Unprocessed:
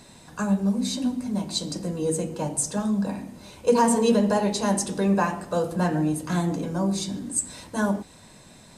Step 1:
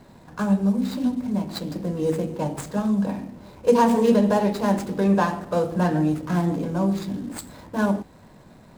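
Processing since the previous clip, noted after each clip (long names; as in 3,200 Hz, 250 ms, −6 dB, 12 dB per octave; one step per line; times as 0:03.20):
running median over 15 samples
level +2.5 dB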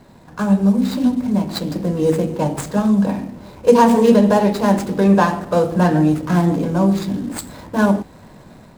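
automatic gain control gain up to 4.5 dB
level +2.5 dB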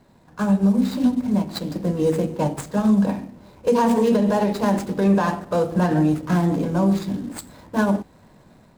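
brickwall limiter −10 dBFS, peak gain reduction 9 dB
expander for the loud parts 1.5 to 1, over −31 dBFS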